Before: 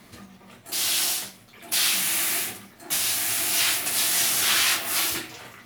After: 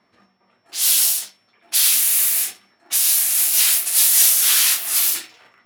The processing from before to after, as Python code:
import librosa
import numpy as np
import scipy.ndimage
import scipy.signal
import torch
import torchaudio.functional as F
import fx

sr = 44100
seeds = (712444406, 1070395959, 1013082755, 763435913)

p1 = x + 10.0 ** (-50.0 / 20.0) * np.sin(2.0 * np.pi * 5400.0 * np.arange(len(x)) / sr)
p2 = fx.env_lowpass(p1, sr, base_hz=1300.0, full_db=-21.5)
p3 = np.sign(p2) * np.maximum(np.abs(p2) - 10.0 ** (-38.0 / 20.0), 0.0)
p4 = p2 + (p3 * 10.0 ** (-4.0 / 20.0))
p5 = fx.riaa(p4, sr, side='recording')
p6 = fx.am_noise(p5, sr, seeds[0], hz=5.7, depth_pct=50)
y = p6 * 10.0 ** (-5.5 / 20.0)